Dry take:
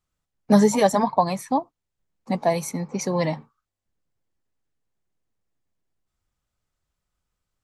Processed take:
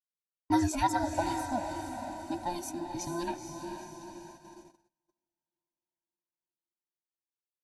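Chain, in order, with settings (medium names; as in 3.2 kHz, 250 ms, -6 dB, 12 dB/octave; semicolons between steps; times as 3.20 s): every band turned upside down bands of 500 Hz; 0.99–3.28 s: high-order bell 1.5 kHz -8.5 dB; echo that smears into a reverb 465 ms, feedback 55%, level -6 dB; gate -40 dBFS, range -35 dB; bass shelf 240 Hz -6.5 dB; trim -8.5 dB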